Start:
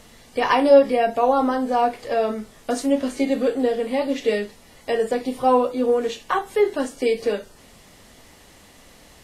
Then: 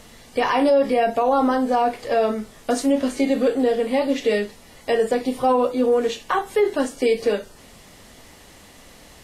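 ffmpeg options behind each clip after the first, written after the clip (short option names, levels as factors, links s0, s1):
-af "alimiter=limit=0.224:level=0:latency=1:release=32,volume=1.33"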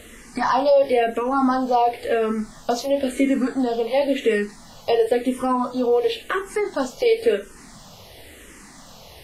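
-filter_complex "[0:a]asplit=2[s0][s1];[s1]acompressor=threshold=0.0501:ratio=6,volume=0.891[s2];[s0][s2]amix=inputs=2:normalize=0,asplit=2[s3][s4];[s4]afreqshift=-0.96[s5];[s3][s5]amix=inputs=2:normalize=1"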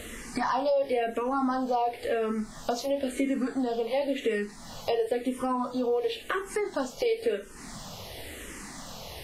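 -af "acompressor=threshold=0.0158:ratio=2,volume=1.33"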